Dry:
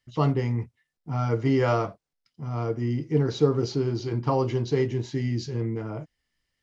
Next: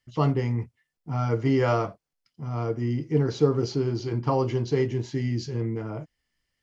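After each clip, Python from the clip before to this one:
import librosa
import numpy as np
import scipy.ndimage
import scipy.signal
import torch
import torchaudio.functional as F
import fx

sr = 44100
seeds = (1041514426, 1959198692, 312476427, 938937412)

y = fx.notch(x, sr, hz=3800.0, q=16.0)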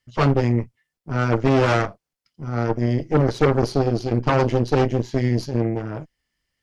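y = 10.0 ** (-16.5 / 20.0) * np.tanh(x / 10.0 ** (-16.5 / 20.0))
y = fx.cheby_harmonics(y, sr, harmonics=(3, 4, 6), levels_db=(-18, -7, -20), full_scale_db=-16.5)
y = y * librosa.db_to_amplitude(6.0)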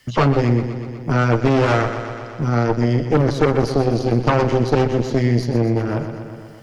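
y = fx.echo_feedback(x, sr, ms=123, feedback_pct=52, wet_db=-11)
y = fx.band_squash(y, sr, depth_pct=70)
y = y * librosa.db_to_amplitude(2.0)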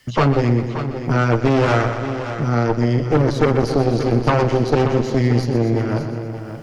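y = x + 10.0 ** (-10.5 / 20.0) * np.pad(x, (int(578 * sr / 1000.0), 0))[:len(x)]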